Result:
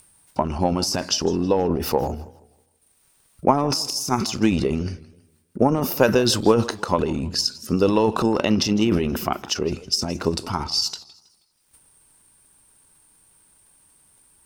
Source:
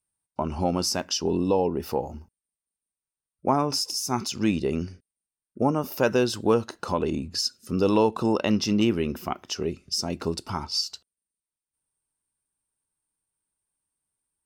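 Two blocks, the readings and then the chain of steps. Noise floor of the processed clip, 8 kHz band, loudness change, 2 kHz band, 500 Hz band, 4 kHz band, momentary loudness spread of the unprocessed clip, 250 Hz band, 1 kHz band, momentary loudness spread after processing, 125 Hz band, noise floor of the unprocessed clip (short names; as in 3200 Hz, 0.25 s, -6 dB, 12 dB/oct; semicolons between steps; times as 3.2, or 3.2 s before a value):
-63 dBFS, +4.5 dB, +4.0 dB, +5.0 dB, +4.0 dB, +5.0 dB, 9 LU, +4.0 dB, +4.5 dB, 8 LU, +5.0 dB, under -85 dBFS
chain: upward compressor, threshold -37 dBFS; transient shaper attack +8 dB, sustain +12 dB; warbling echo 0.16 s, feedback 36%, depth 189 cents, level -19.5 dB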